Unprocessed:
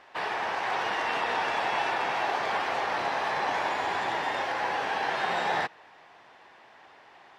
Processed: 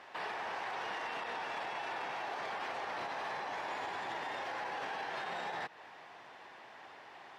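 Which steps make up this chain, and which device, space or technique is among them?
podcast mastering chain (high-pass filter 77 Hz; downward compressor 3 to 1, threshold −34 dBFS, peak gain reduction 8 dB; brickwall limiter −32 dBFS, peak gain reduction 9.5 dB; level +1 dB; MP3 96 kbit/s 48,000 Hz)

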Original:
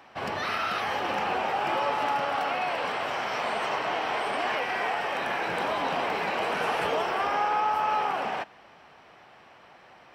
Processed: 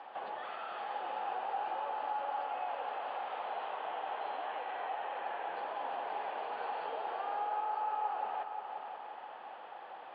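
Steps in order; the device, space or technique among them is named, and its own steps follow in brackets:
0:04.44–0:05.55: low-pass filter 9,700 Hz 12 dB per octave
hearing aid with frequency lowering (hearing-aid frequency compression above 3,200 Hz 4 to 1; downward compressor 3 to 1, threshold −47 dBFS, peak gain reduction 17.5 dB; loudspeaker in its box 390–5,100 Hz, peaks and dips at 510 Hz +4 dB, 810 Hz +9 dB, 2,200 Hz −7 dB, 3,600 Hz −8 dB)
echo machine with several playback heads 177 ms, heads all three, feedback 57%, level −12 dB

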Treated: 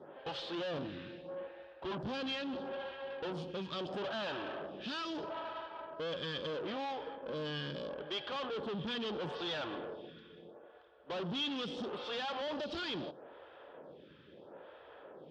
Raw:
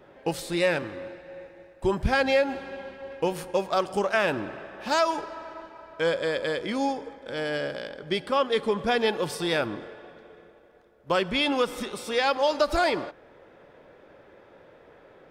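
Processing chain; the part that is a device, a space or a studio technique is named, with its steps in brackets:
vibe pedal into a guitar amplifier (phaser with staggered stages 0.76 Hz; tube saturation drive 40 dB, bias 0.45; loudspeaker in its box 87–4,500 Hz, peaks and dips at 110 Hz −5 dB, 150 Hz +4 dB, 2,100 Hz −8 dB, 3,200 Hz +8 dB)
level +3 dB

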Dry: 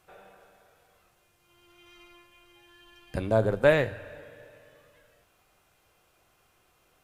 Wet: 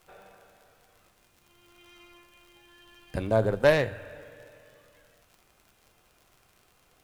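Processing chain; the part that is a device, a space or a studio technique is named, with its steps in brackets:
record under a worn stylus (stylus tracing distortion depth 0.068 ms; surface crackle 70 per second −46 dBFS; pink noise bed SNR 36 dB)

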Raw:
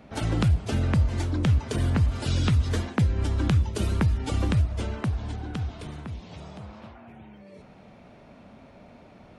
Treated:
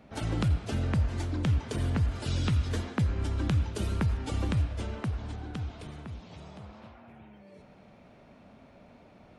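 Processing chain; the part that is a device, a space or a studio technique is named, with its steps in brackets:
filtered reverb send (on a send: high-pass filter 360 Hz + low-pass filter 5,000 Hz 12 dB per octave + convolution reverb RT60 1.7 s, pre-delay 79 ms, DRR 8.5 dB)
on the sum: level −5 dB

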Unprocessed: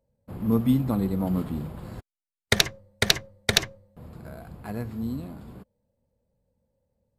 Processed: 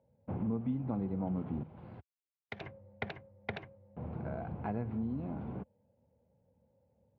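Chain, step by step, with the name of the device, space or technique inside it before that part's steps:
0:01.63–0:02.61: first-order pre-emphasis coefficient 0.8
bass amplifier (downward compressor 5 to 1, threshold −37 dBFS, peak gain reduction 21 dB; loudspeaker in its box 73–2,300 Hz, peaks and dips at 810 Hz +4 dB, 1,200 Hz −5 dB, 1,800 Hz −7 dB)
level +3.5 dB

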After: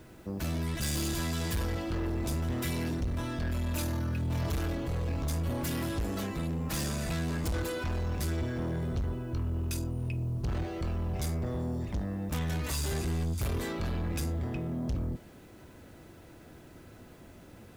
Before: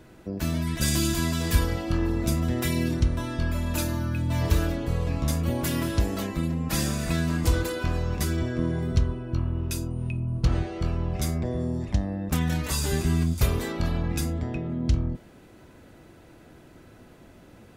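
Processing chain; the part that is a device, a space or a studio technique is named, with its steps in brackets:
open-reel tape (soft clipping −27.5 dBFS, distortion −7 dB; parametric band 84 Hz +2.5 dB; white noise bed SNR 36 dB)
level −1.5 dB

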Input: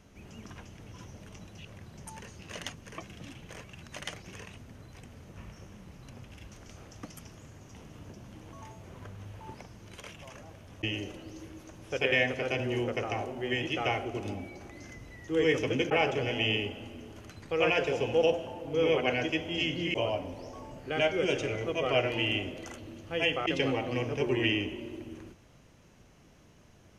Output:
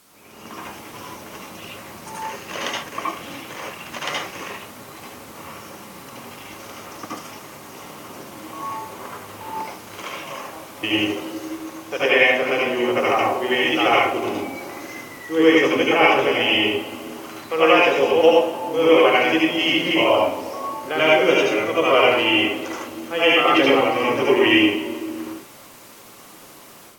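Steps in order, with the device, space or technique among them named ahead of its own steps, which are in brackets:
filmed off a television (band-pass filter 280–6,500 Hz; parametric band 1,100 Hz +7.5 dB 0.54 octaves; convolution reverb RT60 0.35 s, pre-delay 69 ms, DRR −4.5 dB; white noise bed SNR 27 dB; automatic gain control gain up to 8.5 dB; AAC 64 kbit/s 48,000 Hz)

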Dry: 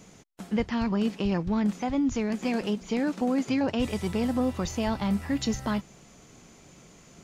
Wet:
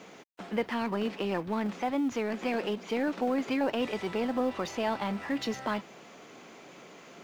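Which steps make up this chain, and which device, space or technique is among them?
phone line with mismatched companding (band-pass filter 340–3,400 Hz; mu-law and A-law mismatch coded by mu)

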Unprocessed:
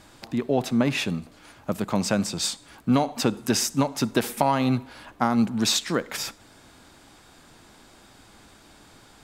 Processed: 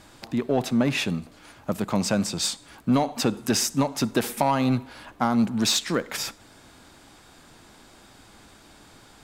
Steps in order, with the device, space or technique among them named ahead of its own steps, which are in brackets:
parallel distortion (in parallel at −4 dB: hard clipping −19 dBFS, distortion −11 dB)
on the sum: level −3.5 dB

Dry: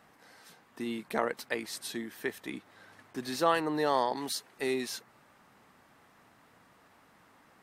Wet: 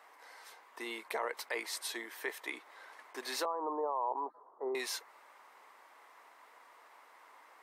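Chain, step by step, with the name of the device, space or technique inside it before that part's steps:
laptop speaker (high-pass filter 410 Hz 24 dB per octave; parametric band 1,000 Hz +8 dB 0.42 octaves; parametric band 2,100 Hz +6 dB 0.23 octaves; brickwall limiter −24 dBFS, peak gain reduction 13 dB)
0:03.45–0:04.75: elliptic low-pass filter 1,100 Hz, stop band 60 dB

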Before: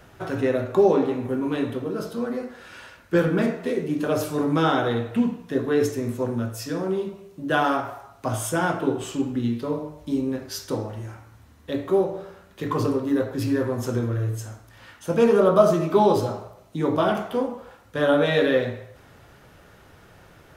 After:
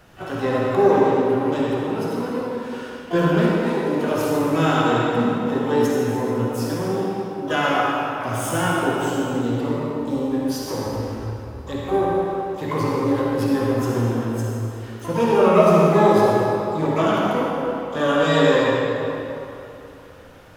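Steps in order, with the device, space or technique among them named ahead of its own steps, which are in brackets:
0:10.86–0:11.96: low shelf with overshoot 100 Hz +13 dB, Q 1.5
shimmer-style reverb (pitch-shifted copies added +12 semitones −10 dB; convolution reverb RT60 3.1 s, pre-delay 48 ms, DRR −3 dB)
level −1.5 dB

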